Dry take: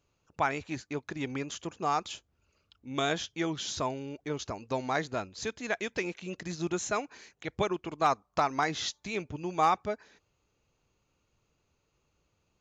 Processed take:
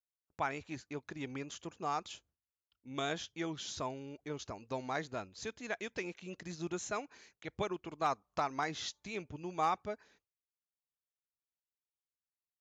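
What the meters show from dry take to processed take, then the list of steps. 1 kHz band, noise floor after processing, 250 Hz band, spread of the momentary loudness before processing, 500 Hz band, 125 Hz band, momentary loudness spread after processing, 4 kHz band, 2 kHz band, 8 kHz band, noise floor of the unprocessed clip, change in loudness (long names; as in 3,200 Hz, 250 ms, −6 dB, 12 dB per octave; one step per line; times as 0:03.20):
−7.0 dB, below −85 dBFS, −7.0 dB, 10 LU, −7.0 dB, −7.0 dB, 10 LU, −7.0 dB, −7.0 dB, −7.0 dB, −77 dBFS, −7.0 dB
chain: downward expander −54 dBFS
level −7 dB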